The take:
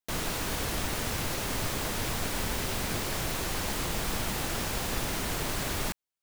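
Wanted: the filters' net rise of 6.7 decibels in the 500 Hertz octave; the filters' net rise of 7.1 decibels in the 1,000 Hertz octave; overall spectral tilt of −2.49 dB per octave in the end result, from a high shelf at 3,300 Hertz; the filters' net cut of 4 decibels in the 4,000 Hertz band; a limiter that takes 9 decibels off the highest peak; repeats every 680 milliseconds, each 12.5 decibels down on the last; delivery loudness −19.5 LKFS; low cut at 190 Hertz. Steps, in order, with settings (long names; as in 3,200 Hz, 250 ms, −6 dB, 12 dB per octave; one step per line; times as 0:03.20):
high-pass filter 190 Hz
parametric band 500 Hz +6.5 dB
parametric band 1,000 Hz +7 dB
high-shelf EQ 3,300 Hz +3.5 dB
parametric band 4,000 Hz −8.5 dB
brickwall limiter −24 dBFS
repeating echo 680 ms, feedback 24%, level −12.5 dB
level +13 dB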